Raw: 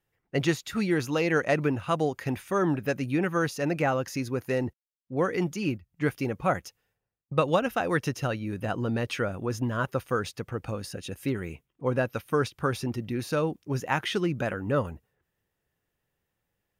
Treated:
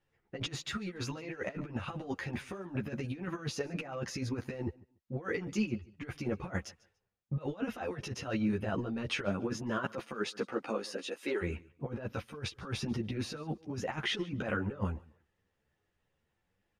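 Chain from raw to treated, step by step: 9.24–11.41 s: high-pass 110 Hz -> 360 Hz 24 dB/octave; compressor with a negative ratio -31 dBFS, ratio -0.5; distance through air 71 m; feedback delay 144 ms, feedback 21%, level -22.5 dB; three-phase chorus

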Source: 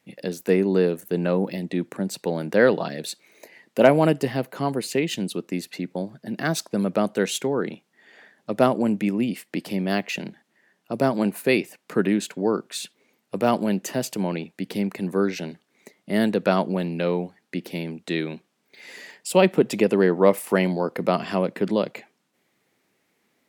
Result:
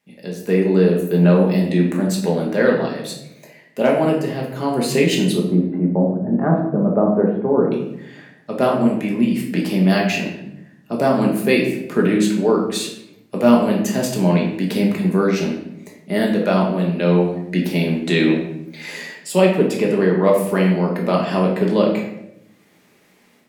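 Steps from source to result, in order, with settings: 5.36–7.72 s: low-pass 1.1 kHz 24 dB/octave; level rider gain up to 15.5 dB; simulated room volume 220 m³, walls mixed, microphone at 1.3 m; trim -5.5 dB

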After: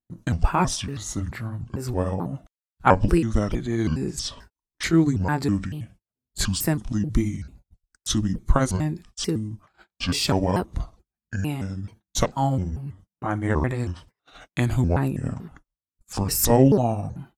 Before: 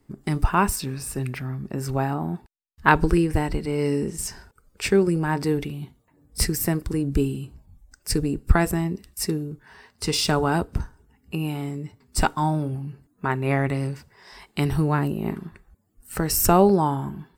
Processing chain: sawtooth pitch modulation -9 st, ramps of 440 ms; gate -47 dBFS, range -33 dB; vibrato with a chosen wave saw up 3.1 Hz, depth 250 cents; trim +1 dB

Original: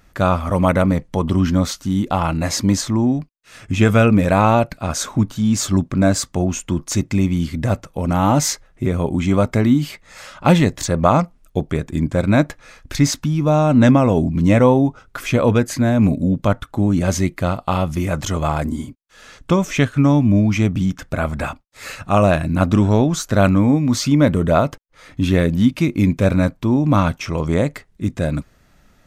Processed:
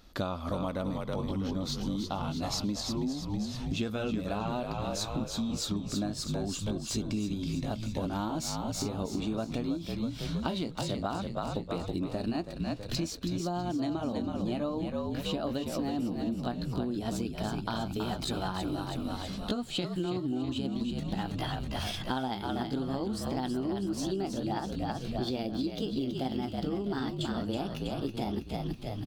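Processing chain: pitch bend over the whole clip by +5.5 st starting unshifted; graphic EQ 125/250/2000/4000/8000 Hz -8/+4/-9/+11/-6 dB; on a send: frequency-shifting echo 324 ms, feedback 50%, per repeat -50 Hz, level -6 dB; on the sum: compression 10:1, threshold -26 dBFS, peak gain reduction 18.5 dB; trim -3.5 dB

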